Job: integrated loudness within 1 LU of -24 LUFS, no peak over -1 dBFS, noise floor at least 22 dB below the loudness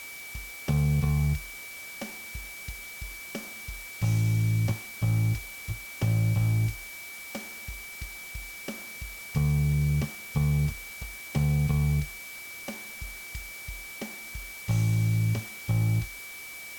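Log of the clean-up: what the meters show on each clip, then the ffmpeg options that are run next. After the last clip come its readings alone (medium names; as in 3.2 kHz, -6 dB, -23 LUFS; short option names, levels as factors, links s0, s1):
steady tone 2.3 kHz; tone level -41 dBFS; noise floor -42 dBFS; noise floor target -52 dBFS; loudness -30.0 LUFS; peak level -16.0 dBFS; loudness target -24.0 LUFS
-> -af "bandreject=f=2300:w=30"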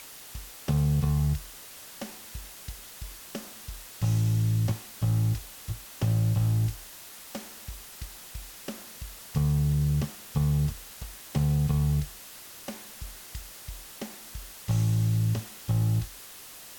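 steady tone not found; noise floor -46 dBFS; noise floor target -51 dBFS
-> -af "afftdn=nr=6:nf=-46"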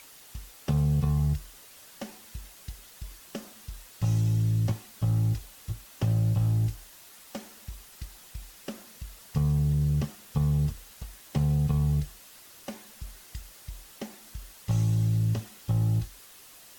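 noise floor -51 dBFS; loudness -28.0 LUFS; peak level -16.5 dBFS; loudness target -24.0 LUFS
-> -af "volume=1.58"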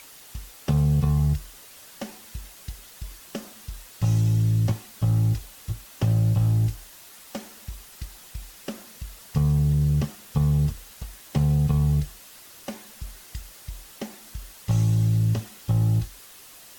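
loudness -24.0 LUFS; peak level -12.5 dBFS; noise floor -47 dBFS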